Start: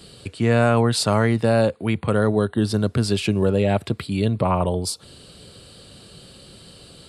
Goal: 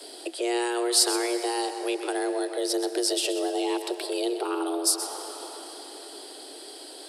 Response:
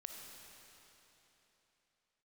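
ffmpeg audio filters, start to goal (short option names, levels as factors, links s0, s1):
-filter_complex "[0:a]afreqshift=240,crystalizer=i=1:c=0,asplit=2[s0][s1];[1:a]atrim=start_sample=2205,adelay=127[s2];[s1][s2]afir=irnorm=-1:irlink=0,volume=0.531[s3];[s0][s3]amix=inputs=2:normalize=0,acrossover=split=290|3000[s4][s5][s6];[s5]acompressor=threshold=0.0224:ratio=4[s7];[s4][s7][s6]amix=inputs=3:normalize=0"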